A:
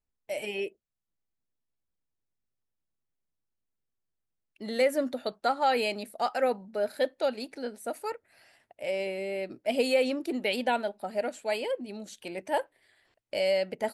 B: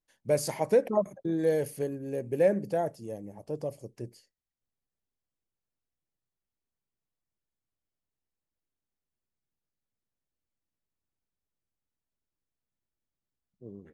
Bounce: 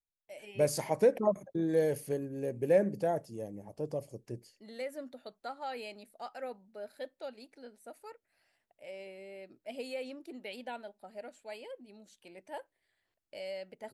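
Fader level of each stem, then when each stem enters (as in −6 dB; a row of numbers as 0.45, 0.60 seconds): −14.5, −2.0 decibels; 0.00, 0.30 seconds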